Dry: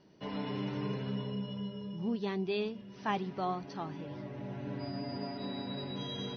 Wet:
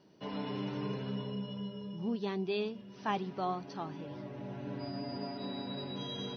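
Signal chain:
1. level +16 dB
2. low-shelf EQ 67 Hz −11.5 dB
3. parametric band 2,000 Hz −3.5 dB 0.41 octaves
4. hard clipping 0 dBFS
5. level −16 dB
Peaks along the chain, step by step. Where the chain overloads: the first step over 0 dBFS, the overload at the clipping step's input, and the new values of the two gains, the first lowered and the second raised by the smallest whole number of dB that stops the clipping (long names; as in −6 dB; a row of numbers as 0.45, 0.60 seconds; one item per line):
−4.5, −3.5, −4.5, −4.5, −20.5 dBFS
no step passes full scale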